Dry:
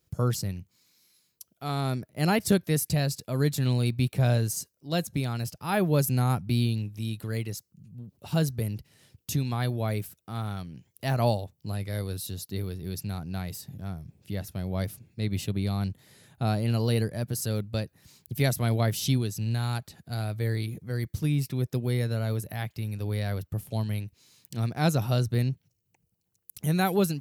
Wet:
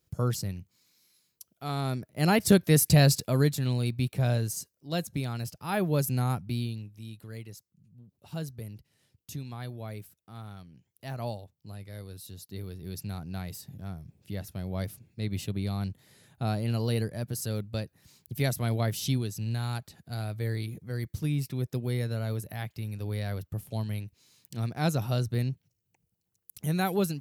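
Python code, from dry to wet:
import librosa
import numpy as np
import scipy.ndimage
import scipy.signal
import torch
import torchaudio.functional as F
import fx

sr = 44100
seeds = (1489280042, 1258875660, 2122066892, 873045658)

y = fx.gain(x, sr, db=fx.line((1.99, -2.0), (3.16, 8.0), (3.6, -3.0), (6.27, -3.0), (6.97, -10.5), (12.11, -10.5), (13.05, -3.0)))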